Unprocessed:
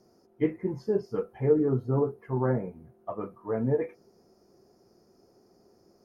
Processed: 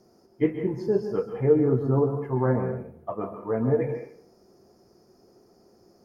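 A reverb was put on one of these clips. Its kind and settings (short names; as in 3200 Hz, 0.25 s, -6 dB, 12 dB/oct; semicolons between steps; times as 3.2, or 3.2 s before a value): plate-style reverb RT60 0.53 s, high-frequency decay 0.8×, pre-delay 0.12 s, DRR 6.5 dB; gain +3 dB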